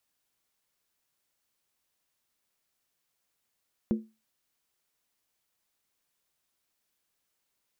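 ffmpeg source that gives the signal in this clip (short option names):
-f lavfi -i "aevalsrc='0.1*pow(10,-3*t/0.27)*sin(2*PI*220*t)+0.0398*pow(10,-3*t/0.214)*sin(2*PI*350.7*t)+0.0158*pow(10,-3*t/0.185)*sin(2*PI*469.9*t)+0.00631*pow(10,-3*t/0.178)*sin(2*PI*505.1*t)+0.00251*pow(10,-3*t/0.166)*sin(2*PI*583.7*t)':d=0.63:s=44100"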